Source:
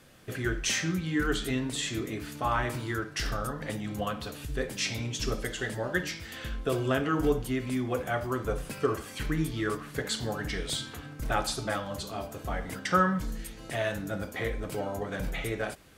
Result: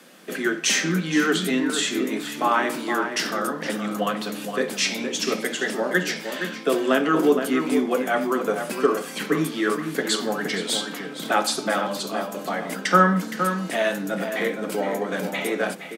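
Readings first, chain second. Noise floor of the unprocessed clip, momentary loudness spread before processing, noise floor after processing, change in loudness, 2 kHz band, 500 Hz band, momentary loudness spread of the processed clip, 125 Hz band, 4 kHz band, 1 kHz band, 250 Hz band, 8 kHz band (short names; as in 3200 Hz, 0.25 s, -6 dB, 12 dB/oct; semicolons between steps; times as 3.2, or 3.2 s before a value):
-45 dBFS, 8 LU, -36 dBFS, +8.0 dB, +8.5 dB, +8.5 dB, 7 LU, 0.0 dB, +8.5 dB, +8.5 dB, +8.5 dB, +8.0 dB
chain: steep high-pass 170 Hz 72 dB/oct; outdoor echo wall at 80 m, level -7 dB; gain +8 dB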